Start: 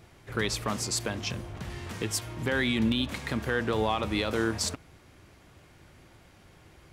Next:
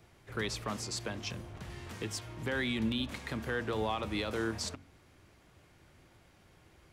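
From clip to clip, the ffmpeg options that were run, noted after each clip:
-filter_complex "[0:a]bandreject=f=46.3:t=h:w=4,bandreject=f=92.6:t=h:w=4,bandreject=f=138.9:t=h:w=4,bandreject=f=185.2:t=h:w=4,bandreject=f=231.5:t=h:w=4,bandreject=f=277.8:t=h:w=4,acrossover=split=270|660|7100[s0][s1][s2][s3];[s3]alimiter=level_in=3.55:limit=0.0631:level=0:latency=1:release=271,volume=0.282[s4];[s0][s1][s2][s4]amix=inputs=4:normalize=0,volume=0.501"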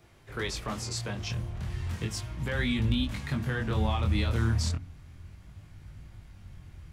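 -af "asubboost=boost=8.5:cutoff=140,flanger=delay=20:depth=5.6:speed=0.34,volume=1.88"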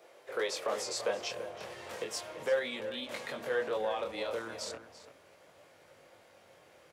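-filter_complex "[0:a]alimiter=level_in=1.19:limit=0.0631:level=0:latency=1:release=93,volume=0.841,highpass=f=520:t=q:w=4.9,asplit=2[s0][s1];[s1]adelay=338.2,volume=0.282,highshelf=f=4000:g=-7.61[s2];[s0][s2]amix=inputs=2:normalize=0"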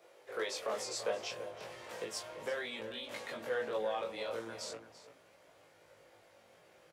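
-filter_complex "[0:a]asplit=2[s0][s1];[s1]adelay=18,volume=0.631[s2];[s0][s2]amix=inputs=2:normalize=0,volume=0.596"

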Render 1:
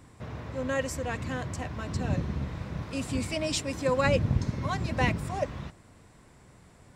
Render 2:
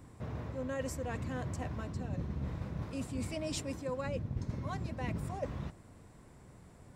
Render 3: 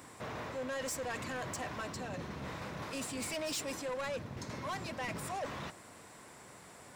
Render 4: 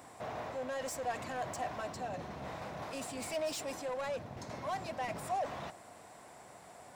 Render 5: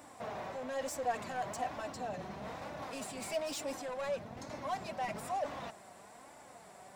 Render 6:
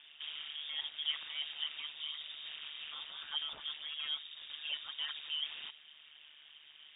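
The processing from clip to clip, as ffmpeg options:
-af "equalizer=f=3400:w=0.33:g=-6.5,areverse,acompressor=threshold=0.02:ratio=6,areverse"
-filter_complex "[0:a]highpass=f=1100:p=1,asplit=2[s0][s1];[s1]alimiter=level_in=4.73:limit=0.0631:level=0:latency=1:release=31,volume=0.211,volume=1.41[s2];[s0][s2]amix=inputs=2:normalize=0,asoftclip=type=tanh:threshold=0.0112,volume=1.78"
-af "equalizer=f=710:w=2.4:g=11,volume=0.668"
-af "flanger=delay=3.4:depth=1.9:regen=42:speed=1.1:shape=sinusoidal,volume=1.5"
-af "tremolo=f=150:d=0.857,lowpass=f=3200:t=q:w=0.5098,lowpass=f=3200:t=q:w=0.6013,lowpass=f=3200:t=q:w=0.9,lowpass=f=3200:t=q:w=2.563,afreqshift=-3800,volume=1.12"

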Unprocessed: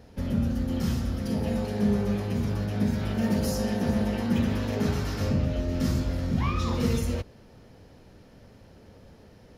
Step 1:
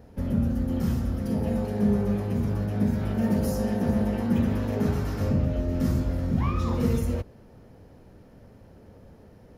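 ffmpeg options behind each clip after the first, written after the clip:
-af "equalizer=f=4200:w=0.53:g=-9.5,volume=1.19"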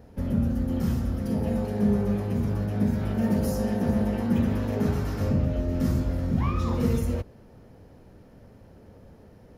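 -af anull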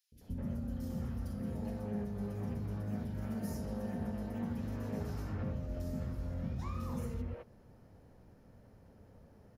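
-filter_complex "[0:a]acompressor=threshold=0.0501:ratio=6,acrossover=split=370|3100[s0][s1][s2];[s0]adelay=120[s3];[s1]adelay=210[s4];[s3][s4][s2]amix=inputs=3:normalize=0,volume=0.398"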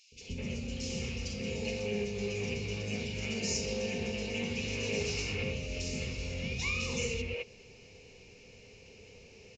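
-af "aexciter=amount=10.5:drive=4.6:freq=2200,aresample=16000,aresample=44100,superequalizer=7b=3.55:12b=3.98"

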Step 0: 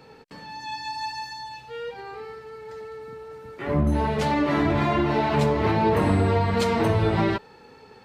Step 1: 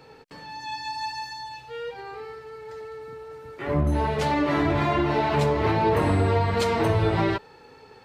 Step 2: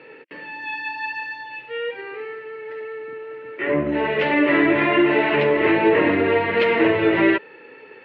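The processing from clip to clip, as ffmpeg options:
-af "equalizer=f=210:w=4.3:g=-8.5"
-af "highpass=280,equalizer=f=330:t=q:w=4:g=6,equalizer=f=540:t=q:w=4:g=3,equalizer=f=790:t=q:w=4:g=-10,equalizer=f=1200:t=q:w=4:g=-5,equalizer=f=1900:t=q:w=4:g=8,equalizer=f=2700:t=q:w=4:g=8,lowpass=f=2900:w=0.5412,lowpass=f=2900:w=1.3066,volume=1.88"

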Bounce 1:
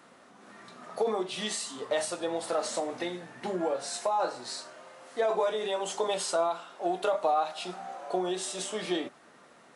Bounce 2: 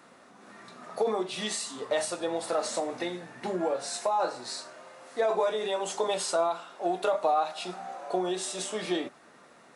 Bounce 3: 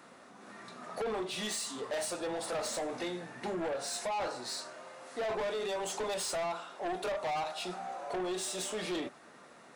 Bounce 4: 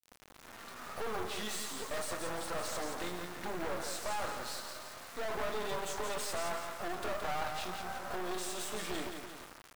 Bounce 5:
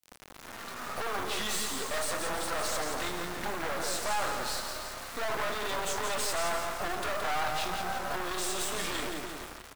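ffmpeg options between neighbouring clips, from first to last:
-af "bandreject=f=3100:w=19,volume=1.12"
-af "asoftclip=type=tanh:threshold=0.0266"
-af "aecho=1:1:171|342|513|684|855|1026:0.473|0.222|0.105|0.0491|0.0231|0.0109,acrusher=bits=5:dc=4:mix=0:aa=0.000001,adynamicequalizer=threshold=0.00126:dfrequency=1300:dqfactor=1.3:tfrequency=1300:tqfactor=1.3:attack=5:release=100:ratio=0.375:range=2.5:mode=boostabove:tftype=bell"
-filter_complex "[0:a]acrossover=split=610|4900[s0][s1][s2];[s0]aeval=exprs='0.0133*(abs(mod(val(0)/0.0133+3,4)-2)-1)':c=same[s3];[s3][s1][s2]amix=inputs=3:normalize=0,asplit=4[s4][s5][s6][s7];[s5]adelay=310,afreqshift=34,volume=0.168[s8];[s6]adelay=620,afreqshift=68,volume=0.0624[s9];[s7]adelay=930,afreqshift=102,volume=0.0229[s10];[s4][s8][s9][s10]amix=inputs=4:normalize=0,volume=2.24"

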